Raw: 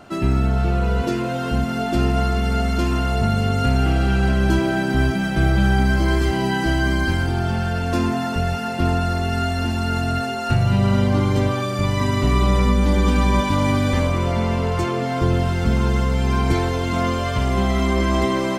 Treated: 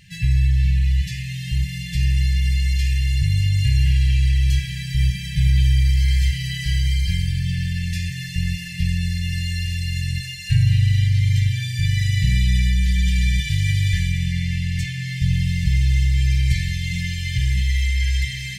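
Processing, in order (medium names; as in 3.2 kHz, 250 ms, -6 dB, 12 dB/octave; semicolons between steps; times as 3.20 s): FFT band-reject 190–1600 Hz; two-slope reverb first 0.82 s, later 3.2 s, from -24 dB, DRR 12 dB; trim +1.5 dB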